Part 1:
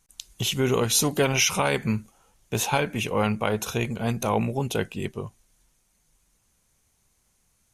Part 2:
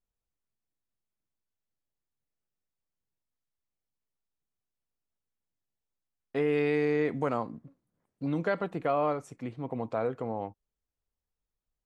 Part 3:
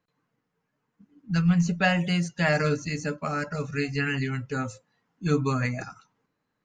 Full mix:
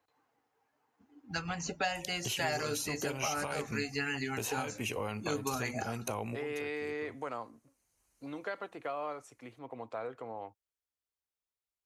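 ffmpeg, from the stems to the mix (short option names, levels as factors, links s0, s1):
-filter_complex "[0:a]bandreject=f=3500:w=5.9,acompressor=threshold=0.0251:ratio=2.5,adelay=1850,volume=1.06[s0];[1:a]lowshelf=f=490:g=-11,volume=0.75,asplit=2[s1][s2];[2:a]equalizer=f=125:t=o:w=0.33:g=-10,equalizer=f=200:t=o:w=0.33:g=-10,equalizer=f=800:t=o:w=0.33:g=12,volume=1.06[s3];[s2]apad=whole_len=422794[s4];[s0][s4]sidechaincompress=threshold=0.00501:ratio=5:attack=22:release=1280[s5];[s5][s1][s3]amix=inputs=3:normalize=0,highpass=59,equalizer=f=170:t=o:w=0.36:g=-15,acrossover=split=150|3800[s6][s7][s8];[s6]acompressor=threshold=0.00562:ratio=4[s9];[s7]acompressor=threshold=0.02:ratio=4[s10];[s8]acompressor=threshold=0.0126:ratio=4[s11];[s9][s10][s11]amix=inputs=3:normalize=0"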